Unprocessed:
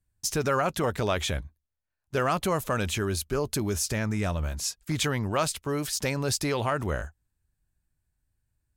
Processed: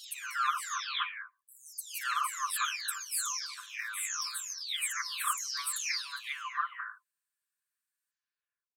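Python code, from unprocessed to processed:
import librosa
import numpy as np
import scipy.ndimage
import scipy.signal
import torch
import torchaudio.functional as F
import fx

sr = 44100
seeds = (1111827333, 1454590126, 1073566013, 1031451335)

y = fx.spec_delay(x, sr, highs='early', ms=649)
y = fx.brickwall_highpass(y, sr, low_hz=1000.0)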